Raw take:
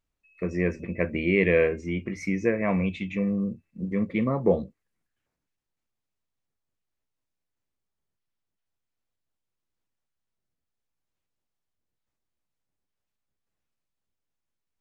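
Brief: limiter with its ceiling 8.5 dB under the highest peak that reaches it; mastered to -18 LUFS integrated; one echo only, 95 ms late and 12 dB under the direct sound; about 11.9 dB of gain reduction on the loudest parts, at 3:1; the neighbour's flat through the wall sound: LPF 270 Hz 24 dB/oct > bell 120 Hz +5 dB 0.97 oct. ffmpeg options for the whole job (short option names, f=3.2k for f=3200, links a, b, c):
-af "acompressor=threshold=-33dB:ratio=3,alimiter=level_in=4dB:limit=-24dB:level=0:latency=1,volume=-4dB,lowpass=f=270:w=0.5412,lowpass=f=270:w=1.3066,equalizer=f=120:t=o:w=0.97:g=5,aecho=1:1:95:0.251,volume=20.5dB"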